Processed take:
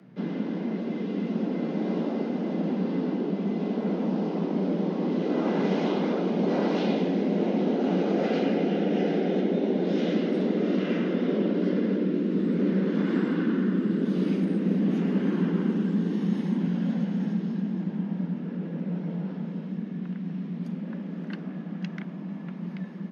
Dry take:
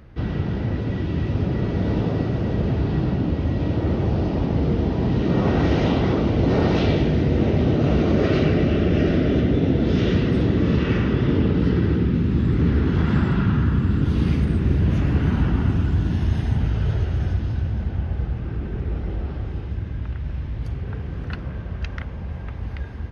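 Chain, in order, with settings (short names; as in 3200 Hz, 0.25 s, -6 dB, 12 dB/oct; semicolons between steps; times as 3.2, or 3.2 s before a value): frequency shift +120 Hz; low shelf 87 Hz +11.5 dB; gain -7.5 dB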